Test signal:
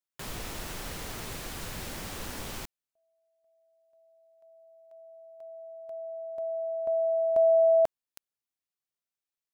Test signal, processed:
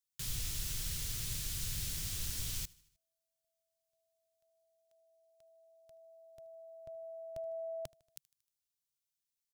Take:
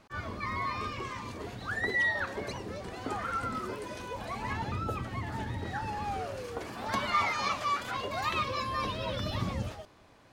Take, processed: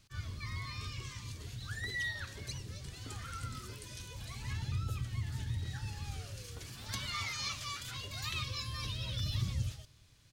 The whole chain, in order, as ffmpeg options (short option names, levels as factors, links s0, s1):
-af "firequalizer=gain_entry='entry(140,0);entry(200,-14);entry(740,-23);entry(1400,-14);entry(3300,-2);entry(6000,2)':delay=0.05:min_phase=1,asoftclip=type=tanh:threshold=0.0891,aecho=1:1:77|154|231|308:0.0668|0.0388|0.0225|0.013,volume=1.19"